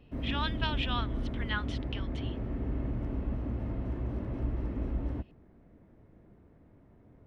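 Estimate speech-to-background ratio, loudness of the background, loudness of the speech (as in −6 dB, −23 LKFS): −1.0 dB, −36.0 LKFS, −37.0 LKFS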